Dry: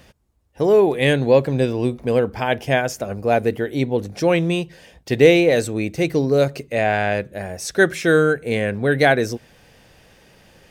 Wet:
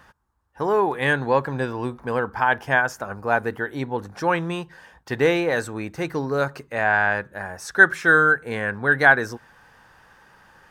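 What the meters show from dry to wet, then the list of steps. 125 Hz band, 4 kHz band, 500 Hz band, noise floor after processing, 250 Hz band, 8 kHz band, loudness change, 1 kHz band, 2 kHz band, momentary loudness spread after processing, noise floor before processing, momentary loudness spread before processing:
-7.5 dB, -7.5 dB, -7.5 dB, -57 dBFS, -7.5 dB, -7.5 dB, -2.5 dB, +2.0 dB, +4.5 dB, 14 LU, -52 dBFS, 10 LU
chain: high-order bell 1.2 kHz +14.5 dB 1.3 oct; trim -7.5 dB

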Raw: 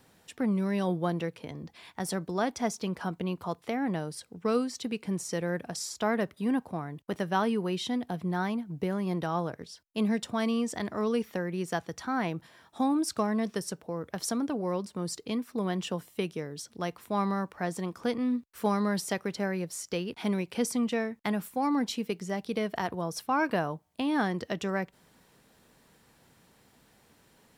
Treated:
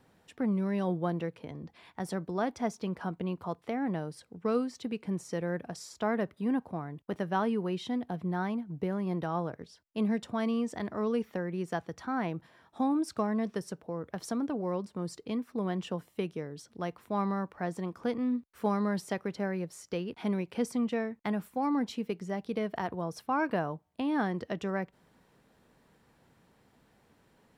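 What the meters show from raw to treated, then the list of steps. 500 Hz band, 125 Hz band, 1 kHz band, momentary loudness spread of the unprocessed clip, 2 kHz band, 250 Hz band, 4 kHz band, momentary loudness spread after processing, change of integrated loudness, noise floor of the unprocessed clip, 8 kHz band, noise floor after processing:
-2.0 dB, -1.5 dB, -2.5 dB, 8 LU, -4.0 dB, -1.5 dB, -7.5 dB, 8 LU, -2.0 dB, -63 dBFS, -10.5 dB, -67 dBFS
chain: treble shelf 3.1 kHz -10.5 dB; trim -1.5 dB

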